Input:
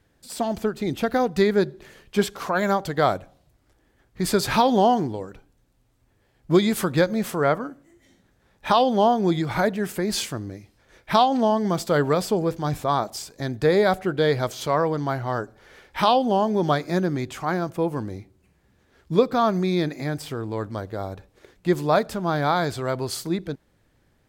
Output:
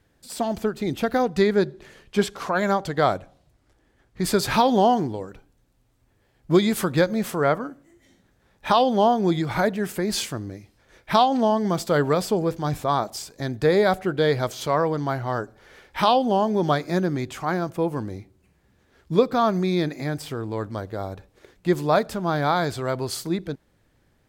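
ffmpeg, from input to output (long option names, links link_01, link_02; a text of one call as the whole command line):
ffmpeg -i in.wav -filter_complex "[0:a]asettb=1/sr,asplit=3[link_01][link_02][link_03];[link_01]atrim=end=1.224[link_04];[link_02]atrim=start=1.22:end=4.24,asetpts=PTS-STARTPTS,afade=type=in:duration=0.004:curve=qsin,afade=type=out:start_time=3.016:duration=0.004:curve=qsin,equalizer=frequency=15000:width_type=o:width=0.5:gain=-9.5[link_05];[link_03]atrim=start=4.236[link_06];[link_04][link_05]acrossfade=duration=0.004:curve1=hsin:curve2=qsin[link_07];[link_07][link_06]acrossfade=duration=0.004:curve1=qsin:curve2=hsin" out.wav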